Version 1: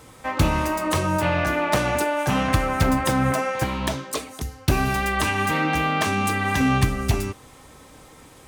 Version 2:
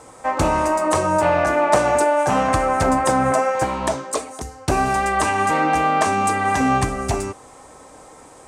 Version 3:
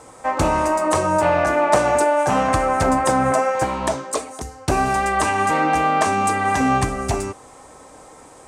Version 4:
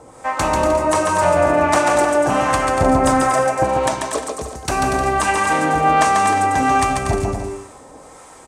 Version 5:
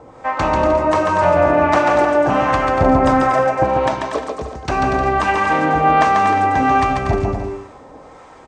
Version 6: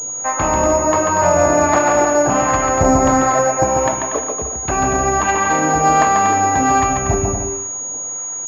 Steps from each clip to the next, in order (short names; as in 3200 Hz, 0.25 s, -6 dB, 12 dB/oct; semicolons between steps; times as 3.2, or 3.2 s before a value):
EQ curve 150 Hz 0 dB, 720 Hz +13 dB, 3400 Hz -1 dB, 8400 Hz +11 dB, 16000 Hz -15 dB; gain -4 dB
nothing audible
harmonic tremolo 1.4 Hz, depth 70%, crossover 850 Hz; bouncing-ball echo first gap 0.14 s, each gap 0.7×, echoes 5; gain +3.5 dB
air absorption 180 m; gain +2 dB
pulse-width modulation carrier 6700 Hz